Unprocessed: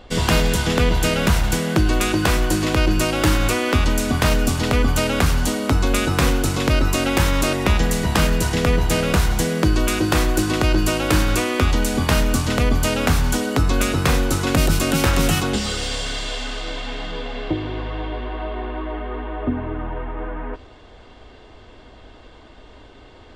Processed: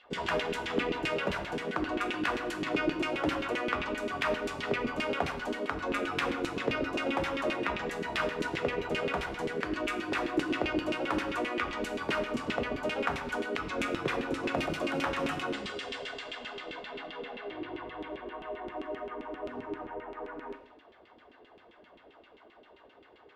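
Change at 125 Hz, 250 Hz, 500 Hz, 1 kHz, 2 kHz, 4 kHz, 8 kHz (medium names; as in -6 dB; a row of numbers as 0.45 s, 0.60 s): -24.0 dB, -13.5 dB, -9.5 dB, -9.0 dB, -9.0 dB, -14.0 dB, -25.0 dB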